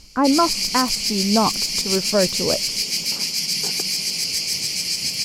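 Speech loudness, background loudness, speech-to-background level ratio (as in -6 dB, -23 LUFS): -22.0 LUFS, -20.5 LUFS, -1.5 dB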